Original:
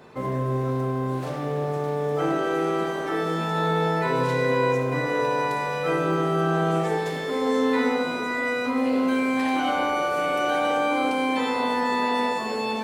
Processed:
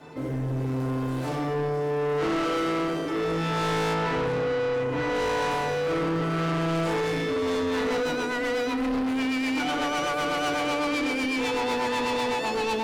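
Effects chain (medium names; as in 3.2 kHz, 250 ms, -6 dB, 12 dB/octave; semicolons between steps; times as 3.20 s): FDN reverb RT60 0.39 s, low-frequency decay 1×, high-frequency decay 1×, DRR -5.5 dB; rotary cabinet horn 0.7 Hz, later 8 Hz, at 7.17 s; saturation -24 dBFS, distortion -7 dB; 3.93–5.14 s: treble shelf 5.4 kHz -> 7.7 kHz -11.5 dB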